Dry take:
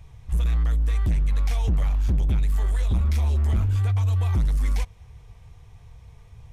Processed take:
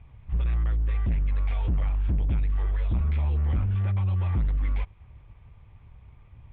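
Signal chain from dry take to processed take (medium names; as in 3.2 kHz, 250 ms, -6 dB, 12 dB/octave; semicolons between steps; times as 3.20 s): comb filter that takes the minimum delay 0.86 ms; steep low-pass 3.1 kHz 36 dB/octave; trim -3 dB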